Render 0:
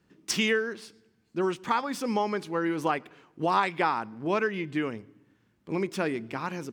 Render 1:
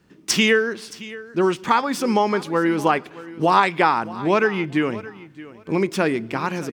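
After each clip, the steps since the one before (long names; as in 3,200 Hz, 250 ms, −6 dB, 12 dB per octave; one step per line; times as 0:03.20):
repeating echo 622 ms, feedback 19%, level −18 dB
level +8.5 dB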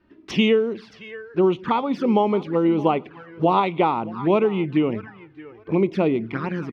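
flanger swept by the level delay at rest 3.3 ms, full sweep at −18 dBFS
high-frequency loss of the air 310 metres
level +2.5 dB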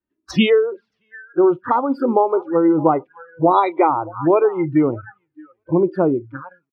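fade-out on the ending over 0.72 s
noise reduction from a noise print of the clip's start 30 dB
level +4.5 dB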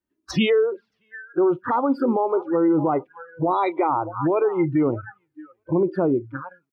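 brickwall limiter −12.5 dBFS, peak gain reduction 10 dB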